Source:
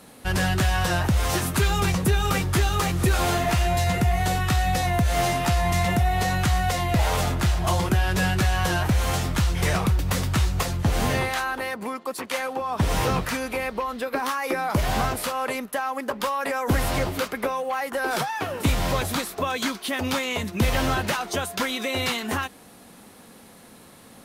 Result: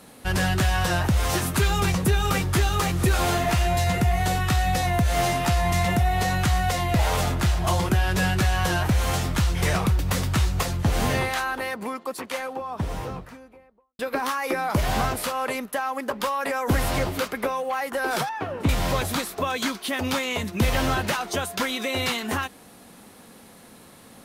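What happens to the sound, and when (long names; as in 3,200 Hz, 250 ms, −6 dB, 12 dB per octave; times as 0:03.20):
0:11.79–0:13.99: fade out and dull
0:18.29–0:18.69: low-pass filter 1,400 Hz 6 dB per octave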